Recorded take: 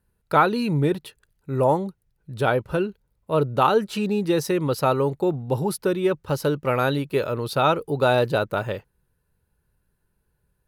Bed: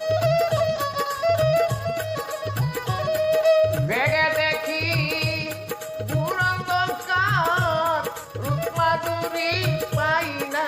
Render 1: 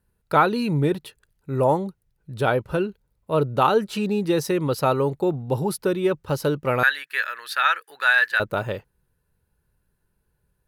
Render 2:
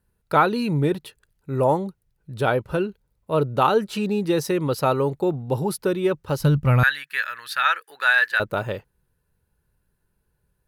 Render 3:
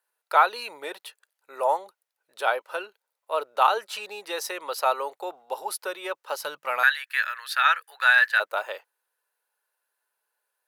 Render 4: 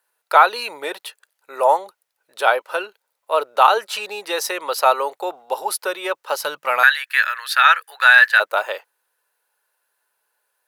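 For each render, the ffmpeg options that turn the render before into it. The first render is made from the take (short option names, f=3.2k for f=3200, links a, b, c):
-filter_complex "[0:a]asettb=1/sr,asplit=3[a][b][c];[a]atrim=end=6.834[d];[b]atrim=start=6.83:end=8.4,asetpts=PTS-STARTPTS,afade=t=in:d=0.004:c=qsin,afade=t=out:st=1.566:d=0.004:c=qsin,highpass=f=1.7k:t=q:w=11[e];[c]atrim=start=8.396[f];[d][e]acrossfade=d=0.004:c1=hsin:c2=qsin[g];[g][f]acrossfade=d=0.004:c1=qsin:c2=hsin"
-filter_complex "[0:a]asplit=3[a][b][c];[a]afade=t=out:st=6.39:d=0.02[d];[b]asubboost=boost=11.5:cutoff=120,afade=t=in:st=6.39:d=0.02,afade=t=out:st=7.65:d=0.02[e];[c]afade=t=in:st=7.65:d=0.02[f];[d][e][f]amix=inputs=3:normalize=0"
-af "highpass=f=630:w=0.5412,highpass=f=630:w=1.3066"
-af "volume=8dB,alimiter=limit=-1dB:level=0:latency=1"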